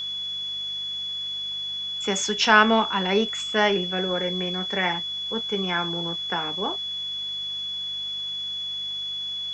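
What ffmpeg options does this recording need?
-af "bandreject=f=49.4:t=h:w=4,bandreject=f=98.8:t=h:w=4,bandreject=f=148.2:t=h:w=4,bandreject=f=197.6:t=h:w=4,bandreject=f=3.4k:w=30,afwtdn=0.0035"

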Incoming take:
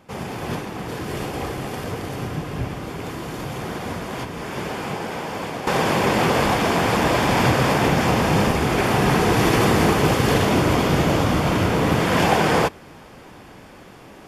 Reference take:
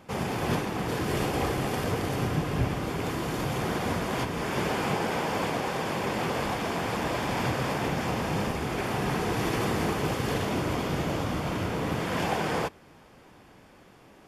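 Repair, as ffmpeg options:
-af "asetnsamples=n=441:p=0,asendcmd='5.67 volume volume -10.5dB',volume=0dB"

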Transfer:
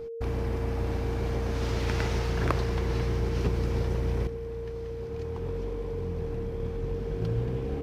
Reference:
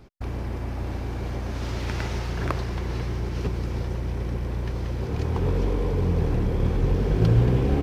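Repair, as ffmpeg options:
-af "bandreject=f=460:w=30,asetnsamples=n=441:p=0,asendcmd='4.27 volume volume 11dB',volume=0dB"

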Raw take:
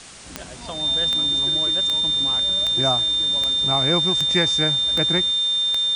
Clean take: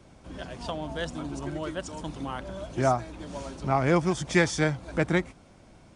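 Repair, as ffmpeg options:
-af "adeclick=t=4,bandreject=f=3.6k:w=30,afwtdn=0.011"

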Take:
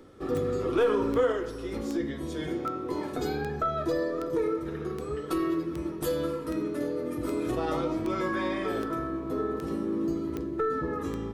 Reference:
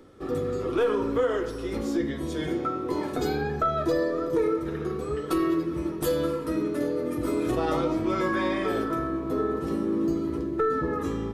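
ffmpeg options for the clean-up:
-af "adeclick=t=4,asetnsamples=n=441:p=0,asendcmd='1.32 volume volume 3.5dB',volume=0dB"

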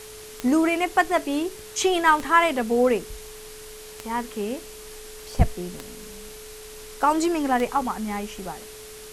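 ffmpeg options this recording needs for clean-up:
-af "adeclick=t=4,bandreject=f=430:w=30,afftdn=nr=27:nf=-41"

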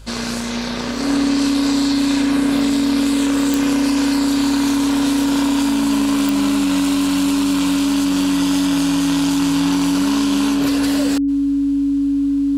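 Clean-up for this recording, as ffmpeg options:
-af "adeclick=t=4,bandreject=f=52.1:t=h:w=4,bandreject=f=104.2:t=h:w=4,bandreject=f=156.3:t=h:w=4,bandreject=f=280:w=30,agate=range=-21dB:threshold=-9dB"

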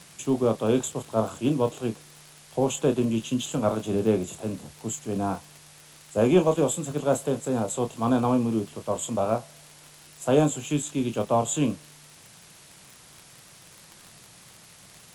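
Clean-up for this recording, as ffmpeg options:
-af "adeclick=t=4,afwtdn=0.0035"

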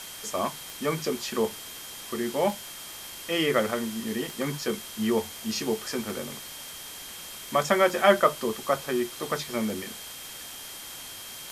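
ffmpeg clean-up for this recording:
-af "adeclick=t=4,bandreject=f=3.2k:w=30,afwtdn=0.01"

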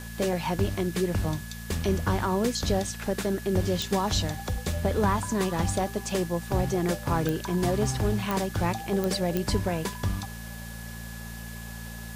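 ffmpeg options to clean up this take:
-af "adeclick=t=4,bandreject=f=56.8:t=h:w=4,bandreject=f=113.6:t=h:w=4,bandreject=f=170.4:t=h:w=4,bandreject=f=227.2:t=h:w=4,bandreject=f=1.7k:w=30,afwtdn=0.005"

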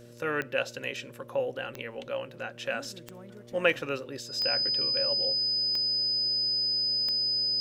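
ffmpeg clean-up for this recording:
-af "adeclick=t=4,bandreject=f=118.9:t=h:w=4,bandreject=f=237.8:t=h:w=4,bandreject=f=356.7:t=h:w=4,bandreject=f=475.6:t=h:w=4,bandreject=f=594.5:t=h:w=4,bandreject=f=5k:w=30"

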